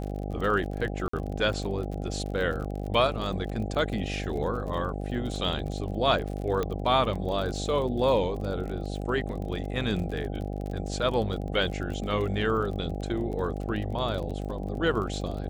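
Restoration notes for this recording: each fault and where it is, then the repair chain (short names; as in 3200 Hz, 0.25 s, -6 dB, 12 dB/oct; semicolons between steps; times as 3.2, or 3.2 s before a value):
buzz 50 Hz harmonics 16 -33 dBFS
crackle 35/s -34 dBFS
1.08–1.13 gap 54 ms
6.63 pop -16 dBFS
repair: de-click; de-hum 50 Hz, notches 16; interpolate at 1.08, 54 ms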